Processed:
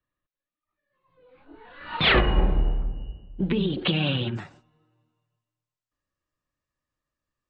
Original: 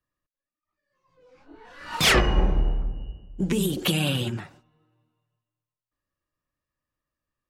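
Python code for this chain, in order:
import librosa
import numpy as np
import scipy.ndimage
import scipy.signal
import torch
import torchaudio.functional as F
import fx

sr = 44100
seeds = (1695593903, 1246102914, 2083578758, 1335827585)

y = fx.steep_lowpass(x, sr, hz=fx.steps((0.0, 4100.0), (4.35, 8400.0)), slope=72)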